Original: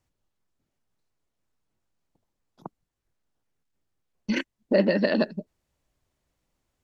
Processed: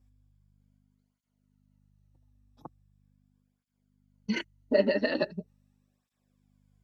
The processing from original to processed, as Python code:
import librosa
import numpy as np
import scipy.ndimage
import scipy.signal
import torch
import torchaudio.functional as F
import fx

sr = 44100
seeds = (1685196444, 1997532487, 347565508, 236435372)

y = fx.spec_ripple(x, sr, per_octave=1.8, drift_hz=-0.32, depth_db=7)
y = fx.add_hum(y, sr, base_hz=50, snr_db=29)
y = fx.flanger_cancel(y, sr, hz=0.41, depth_ms=6.2)
y = F.gain(torch.from_numpy(y), -2.0).numpy()